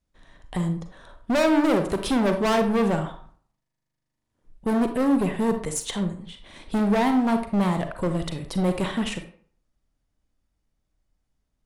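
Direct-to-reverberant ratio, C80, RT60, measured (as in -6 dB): 6.5 dB, 13.0 dB, 0.50 s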